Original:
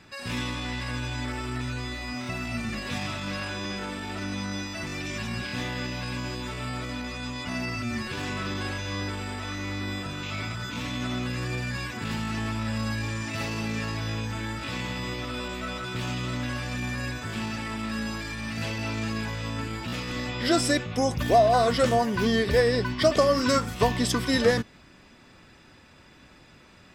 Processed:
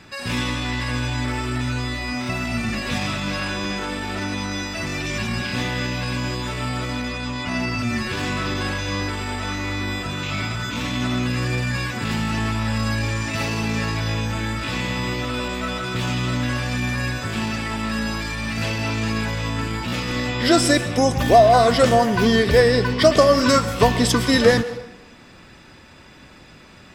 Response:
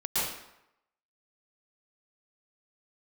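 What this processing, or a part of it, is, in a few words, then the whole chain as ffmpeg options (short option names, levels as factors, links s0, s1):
saturated reverb return: -filter_complex "[0:a]asettb=1/sr,asplit=3[s0][s1][s2];[s0]atrim=end=7.084[s3];[s1]atrim=start=7.08:end=7.79,asetpts=PTS-STARTPTS,afade=t=in:d=0.004:c=qsin,afade=t=out:st=0.706:d=0.004:c=qsin,highshelf=f=9300:g=-8[s4];[s2]atrim=start=7.786[s5];[s3][s4]acrossfade=d=0.004:c1=hsin:c2=qsin[s6];[s6][s5]acrossfade=d=0.004:c1=qsin:c2=hsin,asplit=2[s7][s8];[1:a]atrim=start_sample=2205[s9];[s8][s9]afir=irnorm=-1:irlink=0,asoftclip=type=tanh:threshold=0.266,volume=0.119[s10];[s7][s10]amix=inputs=2:normalize=0,volume=2"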